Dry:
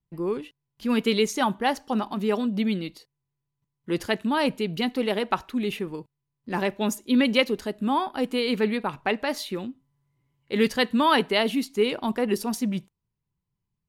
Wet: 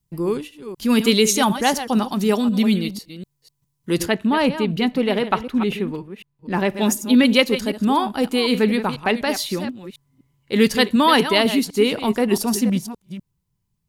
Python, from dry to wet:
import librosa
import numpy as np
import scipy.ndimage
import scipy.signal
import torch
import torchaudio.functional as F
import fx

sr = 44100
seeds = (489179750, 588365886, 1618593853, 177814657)

y = fx.reverse_delay(x, sr, ms=249, wet_db=-11)
y = fx.bass_treble(y, sr, bass_db=4, treble_db=fx.steps((0.0, 11.0), (4.04, -4.0), (6.68, 6.0)))
y = y * 10.0 ** (4.5 / 20.0)